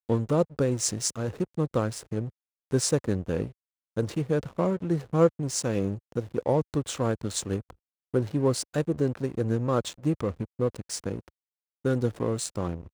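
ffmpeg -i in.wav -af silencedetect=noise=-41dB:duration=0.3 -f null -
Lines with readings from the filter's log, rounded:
silence_start: 2.29
silence_end: 2.71 | silence_duration: 0.42
silence_start: 3.51
silence_end: 3.97 | silence_duration: 0.46
silence_start: 7.71
silence_end: 8.14 | silence_duration: 0.43
silence_start: 11.28
silence_end: 11.85 | silence_duration: 0.57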